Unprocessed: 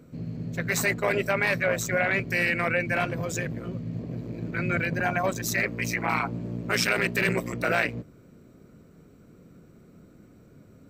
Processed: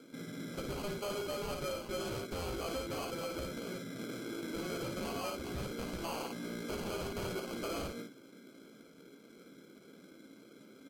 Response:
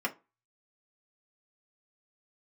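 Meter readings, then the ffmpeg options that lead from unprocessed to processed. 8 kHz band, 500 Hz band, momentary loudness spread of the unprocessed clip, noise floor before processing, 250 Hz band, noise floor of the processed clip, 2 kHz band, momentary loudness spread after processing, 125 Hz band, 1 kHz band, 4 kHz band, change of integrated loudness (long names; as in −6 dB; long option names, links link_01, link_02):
−12.0 dB, −10.0 dB, 11 LU, −54 dBFS, −9.5 dB, −58 dBFS, −21.0 dB, 18 LU, −14.5 dB, −12.5 dB, −7.5 dB, −13.0 dB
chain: -filter_complex "[0:a]bandreject=frequency=730:width=12,acrossover=split=5700[link_01][link_02];[link_02]aeval=exprs='(mod(47.3*val(0)+1,2)-1)/47.3':channel_layout=same[link_03];[link_01][link_03]amix=inputs=2:normalize=0,highpass=frequency=260:width=0.5412,highpass=frequency=260:width=1.3066,aemphasis=mode=reproduction:type=bsi,bandreject=frequency=50:width_type=h:width=6,bandreject=frequency=100:width_type=h:width=6,bandreject=frequency=150:width_type=h:width=6,bandreject=frequency=200:width_type=h:width=6,bandreject=frequency=250:width_type=h:width=6,bandreject=frequency=300:width_type=h:width=6,bandreject=frequency=350:width_type=h:width=6,bandreject=frequency=400:width_type=h:width=6,acrusher=samples=24:mix=1:aa=0.000001,equalizer=frequency=4000:width_type=o:width=0.62:gain=3.5,aecho=1:1:15|56:0.316|0.473,acompressor=threshold=-31dB:ratio=3,asoftclip=type=tanh:threshold=-30.5dB,volume=-2.5dB" -ar 48000 -c:a libvorbis -b:a 64k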